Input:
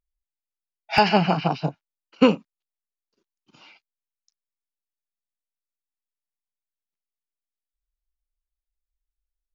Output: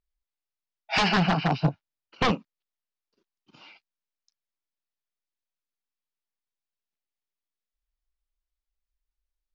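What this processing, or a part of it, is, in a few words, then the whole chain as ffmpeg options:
synthesiser wavefolder: -filter_complex "[0:a]aeval=exprs='0.158*(abs(mod(val(0)/0.158+3,4)-2)-1)':channel_layout=same,lowpass=frequency=5700:width=0.5412,lowpass=frequency=5700:width=1.3066,asettb=1/sr,asplit=3[link_01][link_02][link_03];[link_01]atrim=end=1.514[link_04];[link_02]atrim=start=1.51:end=2.25,asetpts=PTS-STARTPTS,afade=type=in:duration=0.004:curve=qsin,afade=type=out:start_time=0.736:duration=0.004:curve=qsin,equalizer=frequency=88:width=0.97:gain=10[link_05];[link_03]atrim=start=2.246[link_06];[link_04][link_05]acrossfade=duration=0.004:curve1=hsin:curve2=qsin[link_07];[link_07][link_06]acrossfade=duration=0.004:curve1=qsin:curve2=hsin"

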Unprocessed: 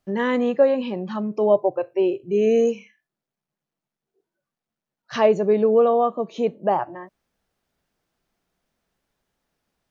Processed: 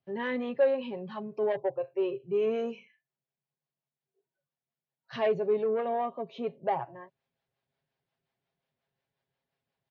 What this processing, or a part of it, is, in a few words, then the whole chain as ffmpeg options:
guitar amplifier with harmonic tremolo: -filter_complex "[0:a]acrossover=split=430[link_01][link_02];[link_01]aeval=exprs='val(0)*(1-0.5/2+0.5/2*cos(2*PI*5.6*n/s))':channel_layout=same[link_03];[link_02]aeval=exprs='val(0)*(1-0.5/2-0.5/2*cos(2*PI*5.6*n/s))':channel_layout=same[link_04];[link_03][link_04]amix=inputs=2:normalize=0,asoftclip=type=tanh:threshold=-14dB,highpass=82,equalizer=frequency=130:width_type=q:width=4:gain=4,equalizer=frequency=280:width_type=q:width=4:gain=-9,equalizer=frequency=1300:width_type=q:width=4:gain=-6,lowpass=frequency=4300:width=0.5412,lowpass=frequency=4300:width=1.3066,aecho=1:1:7.4:0.55,volume=-6dB"

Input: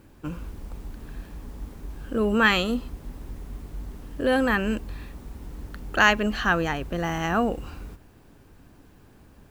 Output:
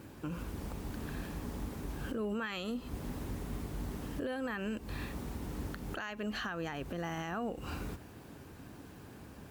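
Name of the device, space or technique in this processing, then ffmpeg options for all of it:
podcast mastering chain: -af "highpass=79,acompressor=threshold=-33dB:ratio=4,alimiter=level_in=8.5dB:limit=-24dB:level=0:latency=1:release=206,volume=-8.5dB,volume=4dB" -ar 44100 -c:a libmp3lame -b:a 96k

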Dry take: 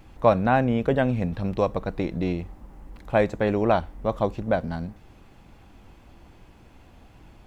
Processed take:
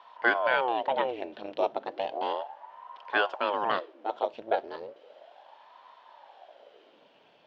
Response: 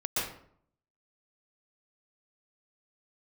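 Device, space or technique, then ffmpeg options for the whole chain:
voice changer toy: -filter_complex "[0:a]aeval=exprs='val(0)*sin(2*PI*560*n/s+560*0.8/0.34*sin(2*PI*0.34*n/s))':channel_layout=same,highpass=580,equalizer=frequency=580:width_type=q:width=4:gain=7,equalizer=frequency=1200:width_type=q:width=4:gain=-6,equalizer=frequency=2100:width_type=q:width=4:gain=-4,equalizer=frequency=3100:width_type=q:width=4:gain=6,lowpass=frequency=4700:width=0.5412,lowpass=frequency=4700:width=1.3066,asettb=1/sr,asplit=3[link_01][link_02][link_03];[link_01]atrim=end=3.794[link_04];[link_02]atrim=start=3.79:end=4.34,asetpts=PTS-STARTPTS,afade=type=in:duration=0.004:curve=qsin,afade=type=out:start_time=0.546:duration=0.004:curve=qsin,highpass=330[link_05];[link_03]atrim=start=4.336[link_06];[link_04][link_05]acrossfade=duration=0.004:curve1=hsin:curve2=qsin[link_07];[link_07][link_06]acrossfade=duration=0.004:curve1=qsin:curve2=hsin"

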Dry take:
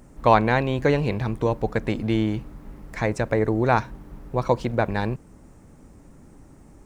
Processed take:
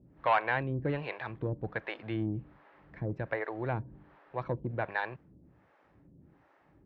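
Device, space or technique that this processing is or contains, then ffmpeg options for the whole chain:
guitar amplifier with harmonic tremolo: -filter_complex "[0:a]acrossover=split=460[link_01][link_02];[link_01]aeval=exprs='val(0)*(1-1/2+1/2*cos(2*PI*1.3*n/s))':channel_layout=same[link_03];[link_02]aeval=exprs='val(0)*(1-1/2-1/2*cos(2*PI*1.3*n/s))':channel_layout=same[link_04];[link_03][link_04]amix=inputs=2:normalize=0,asoftclip=type=tanh:threshold=-13.5dB,highpass=94,equalizer=frequency=230:width_type=q:width=4:gain=-8,equalizer=frequency=440:width_type=q:width=4:gain=-4,equalizer=frequency=1700:width_type=q:width=4:gain=5,lowpass=frequency=3400:width=0.5412,lowpass=frequency=3400:width=1.3066,volume=-4dB"

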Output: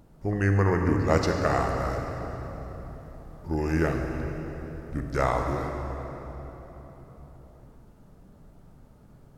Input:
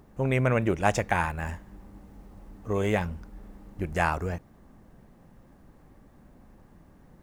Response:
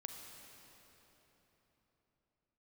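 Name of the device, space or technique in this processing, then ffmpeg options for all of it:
slowed and reverbed: -filter_complex "[0:a]asetrate=33957,aresample=44100[link_01];[1:a]atrim=start_sample=2205[link_02];[link_01][link_02]afir=irnorm=-1:irlink=0,volume=4.5dB"

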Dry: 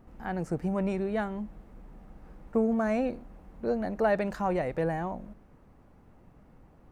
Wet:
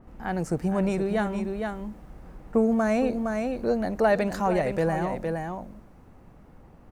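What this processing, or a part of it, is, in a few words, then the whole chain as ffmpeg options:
ducked delay: -filter_complex "[0:a]asplit=3[link_01][link_02][link_03];[link_02]adelay=463,volume=-4.5dB[link_04];[link_03]apad=whole_len=325477[link_05];[link_04][link_05]sidechaincompress=threshold=-32dB:ratio=8:attack=16:release=213[link_06];[link_01][link_06]amix=inputs=2:normalize=0,adynamicequalizer=threshold=0.00251:dfrequency=3800:dqfactor=0.7:tfrequency=3800:tqfactor=0.7:attack=5:release=100:ratio=0.375:range=3.5:mode=boostabove:tftype=highshelf,volume=4dB"

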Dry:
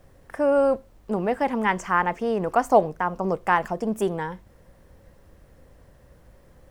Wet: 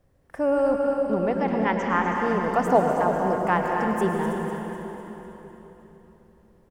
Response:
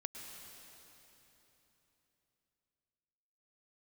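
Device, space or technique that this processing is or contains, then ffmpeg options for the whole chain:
cave: -filter_complex "[0:a]agate=range=-9dB:threshold=-43dB:ratio=16:detection=peak,asplit=3[link_01][link_02][link_03];[link_01]afade=type=out:start_time=0.74:duration=0.02[link_04];[link_02]lowpass=frequency=6000:width=0.5412,lowpass=frequency=6000:width=1.3066,afade=type=in:start_time=0.74:duration=0.02,afade=type=out:start_time=2:duration=0.02[link_05];[link_03]afade=type=in:start_time=2:duration=0.02[link_06];[link_04][link_05][link_06]amix=inputs=3:normalize=0,equalizer=frequency=140:width=0.31:gain=4,aecho=1:1:322:0.299[link_07];[1:a]atrim=start_sample=2205[link_08];[link_07][link_08]afir=irnorm=-1:irlink=0,aecho=1:1:250|500|750|1000|1250|1500:0.316|0.174|0.0957|0.0526|0.0289|0.0159"

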